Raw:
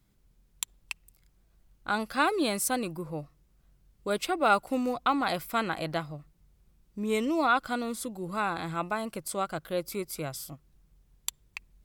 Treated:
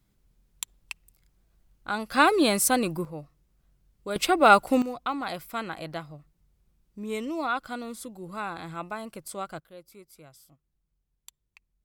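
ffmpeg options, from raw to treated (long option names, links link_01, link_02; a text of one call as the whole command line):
ffmpeg -i in.wav -af "asetnsamples=nb_out_samples=441:pad=0,asendcmd='2.12 volume volume 6dB;3.05 volume volume -2.5dB;4.16 volume volume 7dB;4.82 volume volume -4dB;9.6 volume volume -16dB',volume=-1dB" out.wav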